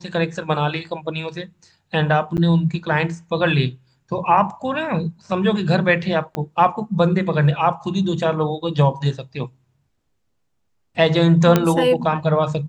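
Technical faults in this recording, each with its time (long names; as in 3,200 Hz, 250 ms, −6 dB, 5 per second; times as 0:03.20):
0:02.37–0:02.38: drop-out 9.2 ms
0:06.35: click −12 dBFS
0:11.56: click −2 dBFS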